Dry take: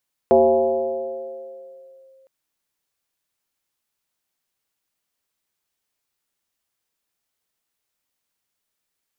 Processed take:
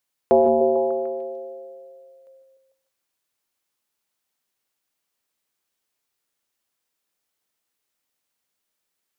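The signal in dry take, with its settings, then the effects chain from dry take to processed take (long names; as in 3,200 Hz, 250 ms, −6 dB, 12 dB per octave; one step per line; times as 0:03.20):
two-operator FM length 1.96 s, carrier 532 Hz, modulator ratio 0.28, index 1.4, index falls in 1.87 s linear, decay 2.77 s, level −9 dB
low-shelf EQ 170 Hz −5 dB
echo through a band-pass that steps 149 ms, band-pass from 270 Hz, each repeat 0.7 octaves, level −3.5 dB
reverb whose tail is shaped and stops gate 190 ms rising, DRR 10.5 dB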